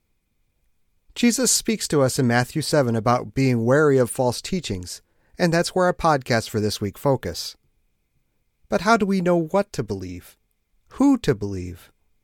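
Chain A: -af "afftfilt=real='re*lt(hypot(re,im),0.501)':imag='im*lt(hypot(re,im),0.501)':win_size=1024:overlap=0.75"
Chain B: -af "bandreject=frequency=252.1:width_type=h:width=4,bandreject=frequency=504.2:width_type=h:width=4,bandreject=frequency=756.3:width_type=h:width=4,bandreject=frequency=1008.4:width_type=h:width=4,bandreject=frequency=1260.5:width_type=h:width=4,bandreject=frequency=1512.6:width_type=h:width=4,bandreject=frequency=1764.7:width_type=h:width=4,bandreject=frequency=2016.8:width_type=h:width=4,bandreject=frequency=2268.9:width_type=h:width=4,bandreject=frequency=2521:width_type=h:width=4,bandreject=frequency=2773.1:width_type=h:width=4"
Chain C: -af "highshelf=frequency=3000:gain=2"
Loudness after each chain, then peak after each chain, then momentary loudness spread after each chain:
−27.5, −21.5, −21.0 LKFS; −6.0, −2.5, −2.0 dBFS; 9, 13, 13 LU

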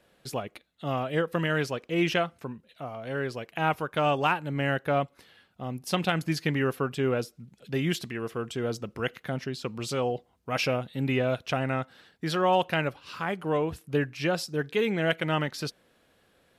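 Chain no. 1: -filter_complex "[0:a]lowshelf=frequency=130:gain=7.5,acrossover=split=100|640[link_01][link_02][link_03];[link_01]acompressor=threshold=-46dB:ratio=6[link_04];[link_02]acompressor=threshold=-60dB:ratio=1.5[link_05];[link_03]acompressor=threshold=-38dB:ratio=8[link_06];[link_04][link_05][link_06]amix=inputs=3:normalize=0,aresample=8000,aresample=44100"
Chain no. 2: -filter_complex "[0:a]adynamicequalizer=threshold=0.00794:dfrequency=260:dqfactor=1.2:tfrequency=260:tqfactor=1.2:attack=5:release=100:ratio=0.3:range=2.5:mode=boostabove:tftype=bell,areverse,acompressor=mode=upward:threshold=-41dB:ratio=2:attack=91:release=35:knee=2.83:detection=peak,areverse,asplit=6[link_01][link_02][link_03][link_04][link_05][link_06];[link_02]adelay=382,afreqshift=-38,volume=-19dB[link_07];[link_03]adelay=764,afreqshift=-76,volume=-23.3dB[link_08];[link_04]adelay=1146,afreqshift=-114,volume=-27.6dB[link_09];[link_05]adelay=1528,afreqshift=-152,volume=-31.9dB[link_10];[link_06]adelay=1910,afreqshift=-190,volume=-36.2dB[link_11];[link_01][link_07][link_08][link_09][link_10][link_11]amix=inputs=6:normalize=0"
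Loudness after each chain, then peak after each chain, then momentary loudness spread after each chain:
−38.5, −27.5 LKFS; −19.5, −11.0 dBFS; 7, 12 LU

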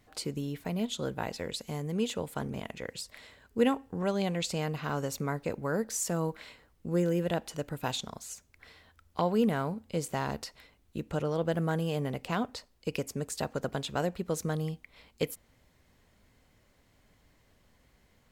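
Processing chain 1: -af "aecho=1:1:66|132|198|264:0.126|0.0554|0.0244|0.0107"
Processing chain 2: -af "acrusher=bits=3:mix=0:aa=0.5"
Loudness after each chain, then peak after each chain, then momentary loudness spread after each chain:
−33.0, −34.5 LKFS; −12.5, −11.0 dBFS; 13, 20 LU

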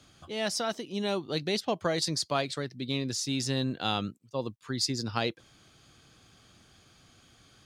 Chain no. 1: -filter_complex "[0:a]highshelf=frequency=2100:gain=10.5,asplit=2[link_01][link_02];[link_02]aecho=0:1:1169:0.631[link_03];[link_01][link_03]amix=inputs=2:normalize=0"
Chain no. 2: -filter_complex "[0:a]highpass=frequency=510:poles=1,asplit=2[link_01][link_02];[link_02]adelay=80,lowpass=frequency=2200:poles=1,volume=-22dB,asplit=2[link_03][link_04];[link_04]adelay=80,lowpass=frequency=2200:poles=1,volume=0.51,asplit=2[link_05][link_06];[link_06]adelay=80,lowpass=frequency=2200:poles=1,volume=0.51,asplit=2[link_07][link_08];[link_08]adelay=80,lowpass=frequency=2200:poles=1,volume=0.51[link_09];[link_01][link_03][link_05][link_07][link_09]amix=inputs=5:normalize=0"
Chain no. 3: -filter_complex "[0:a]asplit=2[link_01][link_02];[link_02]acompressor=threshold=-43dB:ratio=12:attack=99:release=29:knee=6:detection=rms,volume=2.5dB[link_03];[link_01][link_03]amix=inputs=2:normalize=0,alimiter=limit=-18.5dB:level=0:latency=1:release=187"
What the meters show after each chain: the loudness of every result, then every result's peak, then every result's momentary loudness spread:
−25.0, −33.0, −30.5 LKFS; −7.0, −14.5, −18.5 dBFS; 10, 9, 11 LU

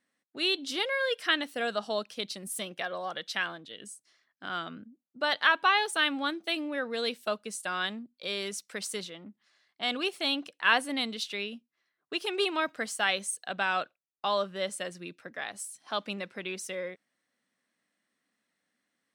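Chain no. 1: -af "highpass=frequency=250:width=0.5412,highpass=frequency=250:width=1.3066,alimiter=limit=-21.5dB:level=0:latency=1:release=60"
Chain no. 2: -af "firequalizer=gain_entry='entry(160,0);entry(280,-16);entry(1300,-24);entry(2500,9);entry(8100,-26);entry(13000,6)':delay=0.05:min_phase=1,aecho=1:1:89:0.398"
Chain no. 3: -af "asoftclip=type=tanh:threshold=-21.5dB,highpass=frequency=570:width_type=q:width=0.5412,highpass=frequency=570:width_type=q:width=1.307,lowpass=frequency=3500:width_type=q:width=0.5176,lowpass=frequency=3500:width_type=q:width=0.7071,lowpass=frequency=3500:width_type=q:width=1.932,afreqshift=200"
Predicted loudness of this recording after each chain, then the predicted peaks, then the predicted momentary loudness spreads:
−34.0, −29.0, −34.5 LKFS; −21.5, −11.5, −17.5 dBFS; 10, 16, 14 LU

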